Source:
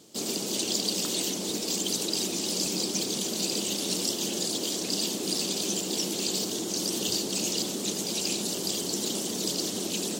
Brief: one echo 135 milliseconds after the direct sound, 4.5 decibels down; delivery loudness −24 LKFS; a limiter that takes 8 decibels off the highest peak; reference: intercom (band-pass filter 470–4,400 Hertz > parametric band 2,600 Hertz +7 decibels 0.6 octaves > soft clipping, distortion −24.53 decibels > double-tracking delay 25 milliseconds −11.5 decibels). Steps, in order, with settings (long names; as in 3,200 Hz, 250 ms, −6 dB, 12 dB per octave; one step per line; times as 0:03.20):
brickwall limiter −21.5 dBFS
band-pass filter 470–4,400 Hz
parametric band 2,600 Hz +7 dB 0.6 octaves
single-tap delay 135 ms −4.5 dB
soft clipping −23.5 dBFS
double-tracking delay 25 ms −11.5 dB
level +8.5 dB